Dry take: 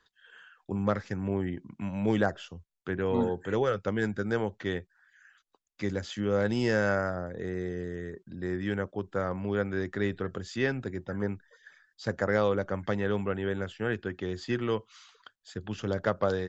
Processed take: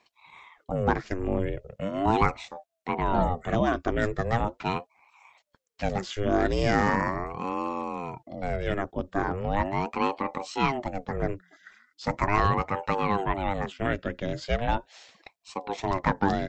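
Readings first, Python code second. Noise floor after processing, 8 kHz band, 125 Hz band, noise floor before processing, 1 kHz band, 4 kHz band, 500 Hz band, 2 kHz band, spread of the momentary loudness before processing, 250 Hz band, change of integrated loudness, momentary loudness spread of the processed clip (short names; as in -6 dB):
-77 dBFS, n/a, +2.5 dB, -80 dBFS, +11.0 dB, +3.5 dB, 0.0 dB, +2.0 dB, 11 LU, +1.0 dB, +3.0 dB, 10 LU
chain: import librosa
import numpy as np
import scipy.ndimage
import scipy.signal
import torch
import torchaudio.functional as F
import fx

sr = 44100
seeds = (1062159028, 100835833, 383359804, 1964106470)

y = fx.ring_lfo(x, sr, carrier_hz=430.0, swing_pct=60, hz=0.39)
y = y * 10.0 ** (6.0 / 20.0)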